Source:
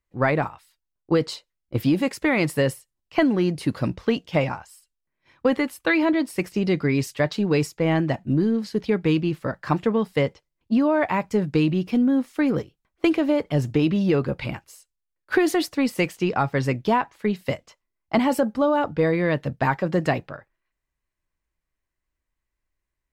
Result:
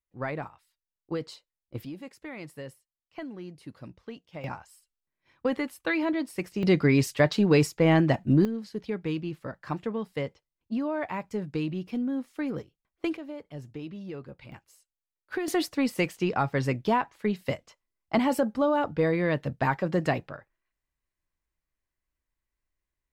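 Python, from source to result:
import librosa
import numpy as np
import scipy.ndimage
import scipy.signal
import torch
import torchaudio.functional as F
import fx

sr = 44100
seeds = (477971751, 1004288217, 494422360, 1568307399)

y = fx.gain(x, sr, db=fx.steps((0.0, -12.0), (1.85, -19.5), (4.44, -7.0), (6.63, 0.5), (8.45, -10.0), (13.17, -18.5), (14.52, -12.0), (15.48, -4.0)))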